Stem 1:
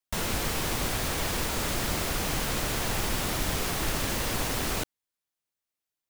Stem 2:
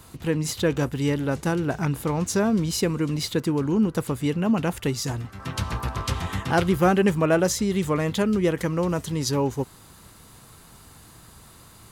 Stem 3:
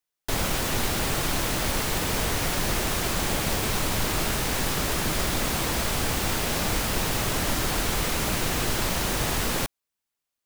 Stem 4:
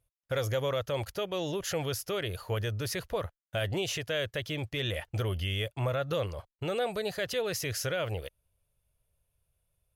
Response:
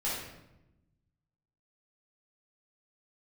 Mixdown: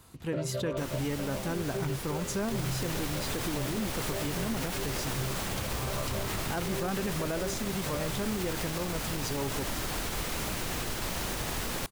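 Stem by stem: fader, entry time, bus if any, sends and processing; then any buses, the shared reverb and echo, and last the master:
−10.5 dB, 0.65 s, no send, no processing
−8.0 dB, 0.00 s, no send, no processing
−7.0 dB, 2.20 s, no send, no processing
+1.5 dB, 0.00 s, no send, channel vocoder with a chord as carrier bare fifth, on C3; multi-voice chorus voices 4, 0.39 Hz, delay 16 ms, depth 4.4 ms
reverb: not used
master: brickwall limiter −23 dBFS, peak gain reduction 10 dB

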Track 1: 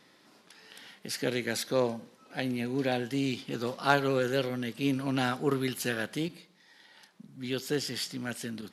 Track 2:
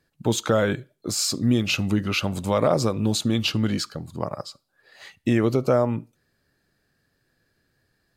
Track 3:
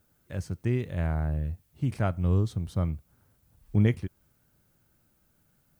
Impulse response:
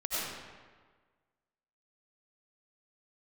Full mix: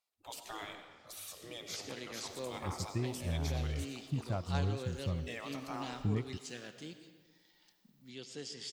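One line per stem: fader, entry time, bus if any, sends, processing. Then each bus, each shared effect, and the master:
−16.5 dB, 0.65 s, send −15 dB, Butterworth low-pass 8,100 Hz 36 dB per octave; high-shelf EQ 4,300 Hz +11 dB
−12.5 dB, 0.00 s, send −11.5 dB, mains-hum notches 50/100 Hz; gate on every frequency bin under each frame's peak −15 dB weak
−1.5 dB, 2.30 s, no send, spectral dynamics exaggerated over time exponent 1.5; downward compressor 3 to 1, threshold −31 dBFS, peak gain reduction 10 dB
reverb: on, RT60 1.5 s, pre-delay 55 ms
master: parametric band 1,500 Hz −6 dB 0.43 octaves

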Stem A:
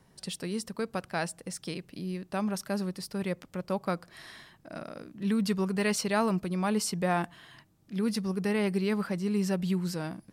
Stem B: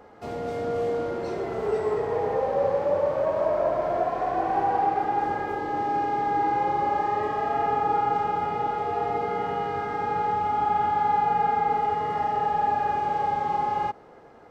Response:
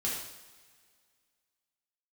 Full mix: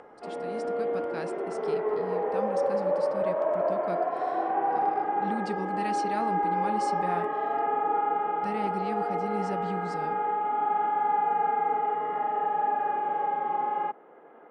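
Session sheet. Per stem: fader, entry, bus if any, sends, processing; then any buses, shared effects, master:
−11.5 dB, 0.00 s, muted 0:07.77–0:08.43, no send, automatic gain control gain up to 5 dB; hum removal 301 Hz, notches 20
−1.5 dB, 0.00 s, no send, Chebyshev band-pass filter 150–3,400 Hz, order 4; three-way crossover with the lows and the highs turned down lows −22 dB, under 220 Hz, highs −13 dB, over 2,700 Hz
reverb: not used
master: high-shelf EQ 5,500 Hz −9.5 dB; upward compression, threshold −46 dBFS; linear-phase brick-wall low-pass 9,700 Hz

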